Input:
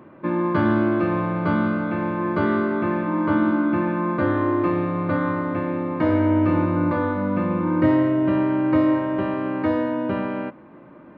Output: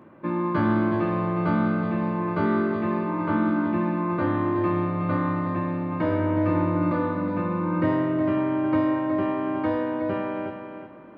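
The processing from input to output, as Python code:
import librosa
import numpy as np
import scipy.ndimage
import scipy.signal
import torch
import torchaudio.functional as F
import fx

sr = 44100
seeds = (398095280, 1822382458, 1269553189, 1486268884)

y = fx.doubler(x, sr, ms=18.0, db=-9.0)
y = fx.echo_feedback(y, sr, ms=366, feedback_pct=26, wet_db=-8)
y = y * 10.0 ** (-4.0 / 20.0)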